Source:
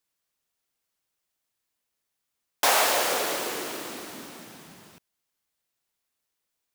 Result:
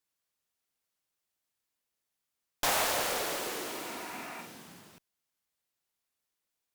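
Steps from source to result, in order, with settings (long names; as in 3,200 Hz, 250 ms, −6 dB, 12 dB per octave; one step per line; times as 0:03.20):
0:03.76–0:04.38: healed spectral selection 640–2,800 Hz before
asymmetric clip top −30.5 dBFS
0:04.34–0:04.81: flutter between parallel walls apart 8 metres, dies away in 0.42 s
level −4 dB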